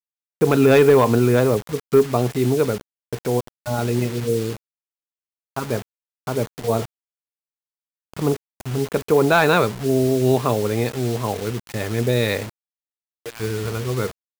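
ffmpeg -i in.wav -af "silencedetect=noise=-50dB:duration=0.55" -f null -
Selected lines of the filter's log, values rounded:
silence_start: 4.57
silence_end: 5.56 | silence_duration: 1.00
silence_start: 6.85
silence_end: 8.14 | silence_duration: 1.28
silence_start: 12.49
silence_end: 13.26 | silence_duration: 0.76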